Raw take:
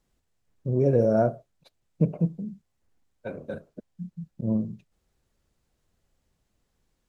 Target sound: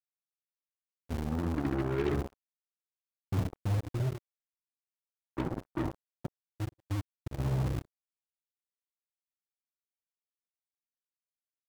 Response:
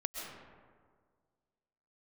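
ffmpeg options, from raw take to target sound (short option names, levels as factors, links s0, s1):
-filter_complex "[0:a]lowpass=f=1200:p=1,bandreject=f=60:t=h:w=6,bandreject=f=120:t=h:w=6,bandreject=f=180:t=h:w=6,bandreject=f=240:t=h:w=6,bandreject=f=300:t=h:w=6,bandreject=f=360:t=h:w=6,bandreject=f=420:t=h:w=6,bandreject=f=480:t=h:w=6,bandreject=f=540:t=h:w=6,areverse,acompressor=threshold=0.0282:ratio=20,areverse,asetrate=26725,aresample=44100,acrossover=split=120[s0][s1];[s0]acrusher=bits=3:mode=log:mix=0:aa=0.000001[s2];[s2][s1]amix=inputs=2:normalize=0,tremolo=f=15:d=0.31,acrusher=bits=5:mix=0:aa=0.5,volume=1.68"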